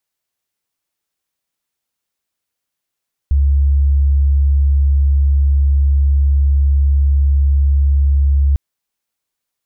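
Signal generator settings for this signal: tone sine 69.9 Hz -9 dBFS 5.25 s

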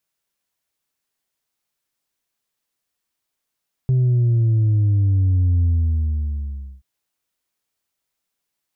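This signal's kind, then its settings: sub drop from 130 Hz, over 2.93 s, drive 2 dB, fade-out 1.19 s, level -14 dB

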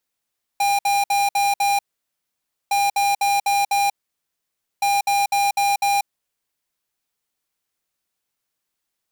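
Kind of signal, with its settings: beep pattern square 804 Hz, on 0.19 s, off 0.06 s, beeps 5, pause 0.92 s, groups 3, -18.5 dBFS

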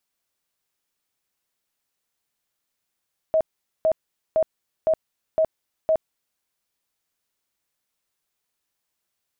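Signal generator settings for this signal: tone bursts 637 Hz, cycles 43, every 0.51 s, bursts 6, -15.5 dBFS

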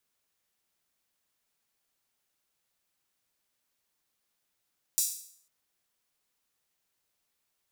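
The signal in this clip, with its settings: open hi-hat length 0.50 s, high-pass 6400 Hz, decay 0.59 s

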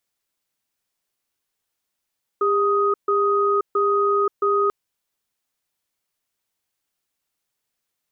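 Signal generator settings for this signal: cadence 403 Hz, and 1250 Hz, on 0.53 s, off 0.14 s, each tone -19 dBFS 2.29 s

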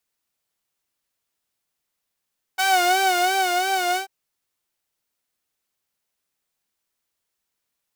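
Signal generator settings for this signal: synth patch with vibrato F#5, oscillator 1 saw, detune 14 cents, noise -19 dB, filter highpass, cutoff 210 Hz, Q 1, filter envelope 2.5 oct, filter sustain 20%, attack 19 ms, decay 1.05 s, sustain -4.5 dB, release 0.11 s, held 1.38 s, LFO 2.9 Hz, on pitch 82 cents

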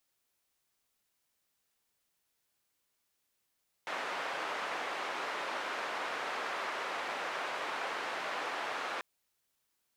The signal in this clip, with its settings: noise band 510–1600 Hz, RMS -37.5 dBFS 5.14 s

